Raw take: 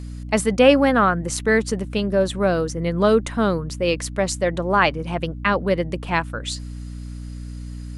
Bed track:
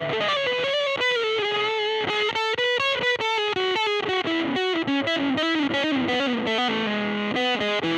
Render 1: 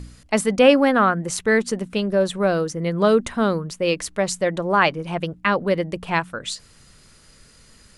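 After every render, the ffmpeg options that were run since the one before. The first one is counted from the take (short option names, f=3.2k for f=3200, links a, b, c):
-af "bandreject=f=60:t=h:w=4,bandreject=f=120:t=h:w=4,bandreject=f=180:t=h:w=4,bandreject=f=240:t=h:w=4,bandreject=f=300:t=h:w=4"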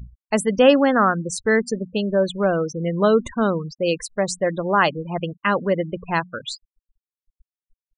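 -af "afftfilt=real='re*gte(hypot(re,im),0.0501)':imag='im*gte(hypot(re,im),0.0501)':win_size=1024:overlap=0.75,bandreject=f=2.3k:w=5.4"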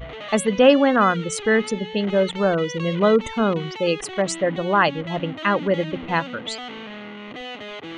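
-filter_complex "[1:a]volume=-11dB[a];[0:a][a]amix=inputs=2:normalize=0"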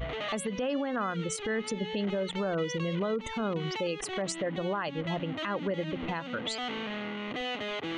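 -af "acompressor=threshold=-27dB:ratio=3,alimiter=limit=-23dB:level=0:latency=1:release=92"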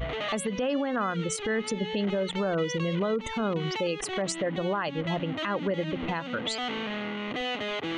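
-af "volume=3dB"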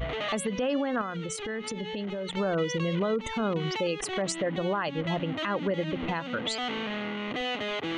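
-filter_complex "[0:a]asettb=1/sr,asplit=3[a][b][c];[a]atrim=end=1.014[d];[b]atrim=start=1.01:end=2.37,asetpts=PTS-STARTPTS,afade=t=in:d=0.004:c=qsin,afade=t=out:st=1.356:d=0.004:c=qsin,acompressor=threshold=-30dB:ratio=6:attack=3.2:release=140:knee=1:detection=peak[e];[c]atrim=start=2.366[f];[d][e]acrossfade=d=0.004:c1=hsin:c2=qsin[g];[g][f]acrossfade=d=0.004:c1=qsin:c2=hsin"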